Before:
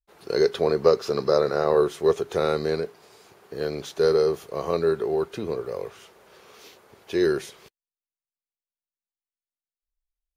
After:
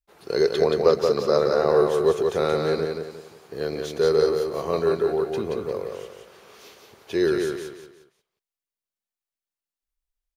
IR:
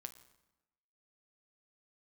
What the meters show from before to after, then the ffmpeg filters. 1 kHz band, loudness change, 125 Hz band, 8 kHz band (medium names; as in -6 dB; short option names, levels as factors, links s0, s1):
+1.5 dB, +1.0 dB, +1.5 dB, +1.5 dB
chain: -af "aecho=1:1:177|354|531|708:0.596|0.203|0.0689|0.0234"